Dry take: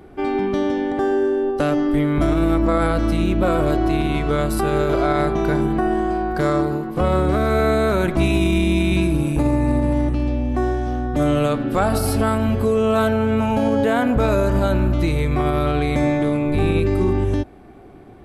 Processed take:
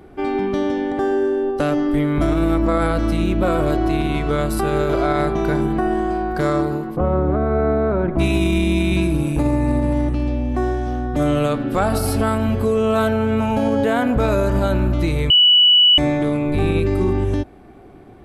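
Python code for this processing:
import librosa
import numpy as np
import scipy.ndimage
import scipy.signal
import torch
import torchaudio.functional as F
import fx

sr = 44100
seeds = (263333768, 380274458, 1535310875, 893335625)

y = fx.lowpass(x, sr, hz=1100.0, slope=12, at=(6.95, 8.18), fade=0.02)
y = fx.edit(y, sr, fx.bleep(start_s=15.3, length_s=0.68, hz=2950.0, db=-8.5), tone=tone)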